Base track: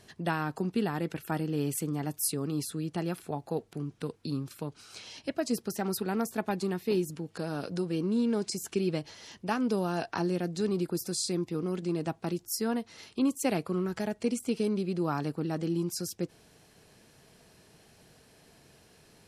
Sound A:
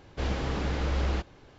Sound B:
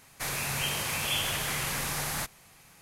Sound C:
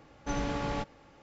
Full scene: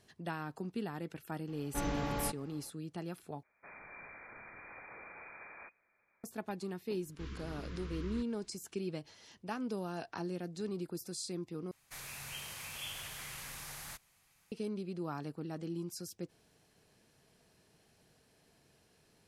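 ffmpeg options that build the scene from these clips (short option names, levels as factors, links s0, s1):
-filter_complex "[2:a]asplit=2[s0][s1];[0:a]volume=0.335[s2];[s0]lowpass=f=2100:t=q:w=0.5098,lowpass=f=2100:t=q:w=0.6013,lowpass=f=2100:t=q:w=0.9,lowpass=f=2100:t=q:w=2.563,afreqshift=-2500[s3];[1:a]asuperstop=centerf=660:order=20:qfactor=1.3[s4];[s1]equalizer=f=330:w=0.38:g=-6[s5];[s2]asplit=3[s6][s7][s8];[s6]atrim=end=3.434[s9];[s3]atrim=end=2.81,asetpts=PTS-STARTPTS,volume=0.158[s10];[s7]atrim=start=6.236:end=11.714[s11];[s5]atrim=end=2.81,asetpts=PTS-STARTPTS,volume=0.224[s12];[s8]atrim=start=14.516[s13];[3:a]atrim=end=1.22,asetpts=PTS-STARTPTS,volume=0.668,afade=t=in:d=0.004:c=hsin,afade=t=out:st=1.216:d=0.004:c=hsin,adelay=1480[s14];[s4]atrim=end=1.58,asetpts=PTS-STARTPTS,volume=0.178,afade=t=in:d=0.004:c=hsin,afade=t=out:st=1.576:d=0.004:c=hsin,adelay=7010[s15];[s9][s10]acrossfade=d=0.004:c1=hsin:c2=hsin[s16];[s16][s11]acrossfade=d=0.004:c1=hsin:c2=hsin[s17];[s17][s12]acrossfade=d=0.004:c1=hsin:c2=hsin[s18];[s18][s13]acrossfade=d=0.004:c1=hsin:c2=hsin[s19];[s19][s14][s15]amix=inputs=3:normalize=0"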